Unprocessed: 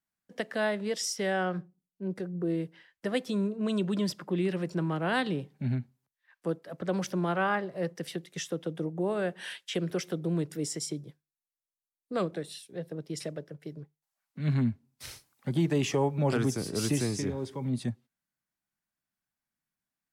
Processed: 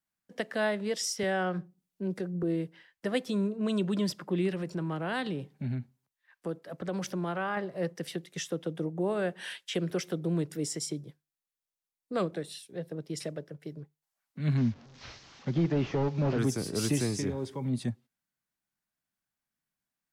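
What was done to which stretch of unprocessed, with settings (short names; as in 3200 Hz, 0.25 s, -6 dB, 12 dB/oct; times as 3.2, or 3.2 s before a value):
1.23–2.43 three-band squash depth 40%
4.49–7.57 compressor 2:1, threshold -31 dBFS
14.57–16.39 delta modulation 32 kbps, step -47.5 dBFS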